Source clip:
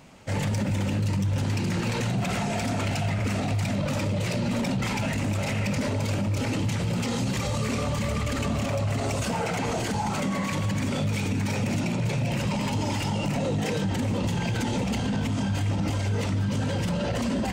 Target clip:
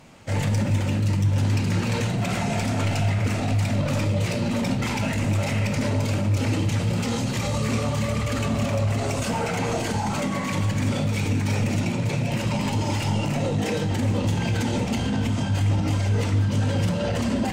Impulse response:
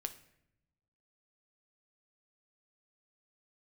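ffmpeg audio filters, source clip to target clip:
-filter_complex "[1:a]atrim=start_sample=2205,asetrate=30870,aresample=44100[a];[0:a][a]afir=irnorm=-1:irlink=0,volume=1.5dB"

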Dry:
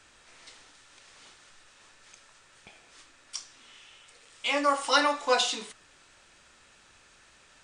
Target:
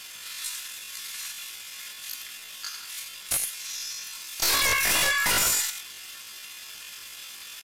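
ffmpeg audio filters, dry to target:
-filter_complex "[0:a]highpass=f=660:w=0.5412,highpass=f=660:w=1.3066,aecho=1:1:5.6:0.45,acompressor=threshold=-29dB:ratio=10,asplit=2[a][b];[b]aecho=0:1:88:0.398[c];[a][c]amix=inputs=2:normalize=0,aeval=exprs='val(0)*gte(abs(val(0)),0.00112)':c=same,aeval=exprs='0.106*(cos(1*acos(clip(val(0)/0.106,-1,1)))-cos(1*PI/2))+0.0531*(cos(2*acos(clip(val(0)/0.106,-1,1)))-cos(2*PI/2))+0.00422*(cos(7*acos(clip(val(0)/0.106,-1,1)))-cos(7*PI/2))+0.00133*(cos(8*acos(clip(val(0)/0.106,-1,1)))-cos(8*PI/2))':c=same,aresample=16000,aeval=exprs='0.15*sin(PI/2*8.91*val(0)/0.15)':c=same,aresample=44100,asetrate=85689,aresample=44100,atempo=0.514651,volume=-2.5dB"

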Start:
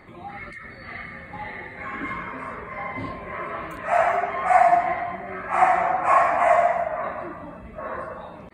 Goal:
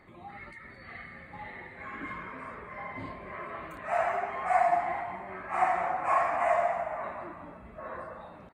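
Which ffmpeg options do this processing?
-filter_complex "[0:a]asplit=5[a][b][c][d][e];[b]adelay=217,afreqshift=100,volume=-15dB[f];[c]adelay=434,afreqshift=200,volume=-22.1dB[g];[d]adelay=651,afreqshift=300,volume=-29.3dB[h];[e]adelay=868,afreqshift=400,volume=-36.4dB[i];[a][f][g][h][i]amix=inputs=5:normalize=0,volume=-8.5dB"

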